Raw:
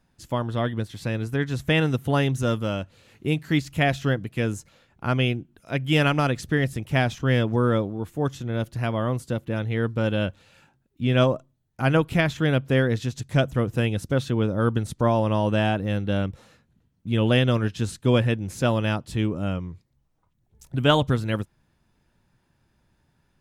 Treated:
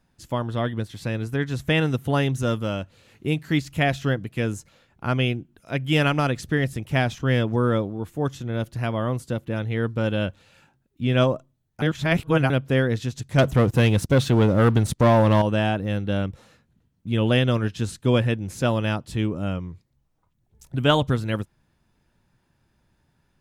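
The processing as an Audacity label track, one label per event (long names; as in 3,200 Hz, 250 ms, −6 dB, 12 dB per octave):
11.820000	12.500000	reverse
13.380000	15.420000	leveller curve on the samples passes 2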